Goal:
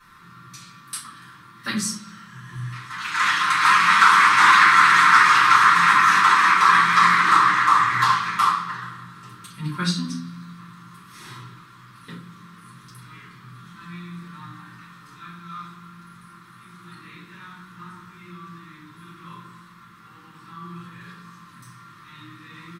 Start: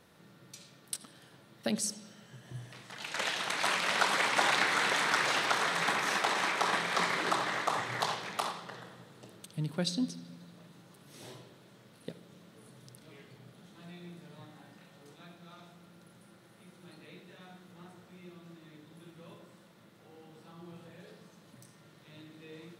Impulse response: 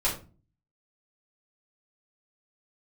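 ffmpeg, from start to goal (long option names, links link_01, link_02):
-filter_complex "[0:a]firequalizer=gain_entry='entry(270,0);entry(620,-23);entry(1100,14);entry(2600,2)':delay=0.05:min_phase=1[link_01];[1:a]atrim=start_sample=2205[link_02];[link_01][link_02]afir=irnorm=-1:irlink=0,volume=-2dB"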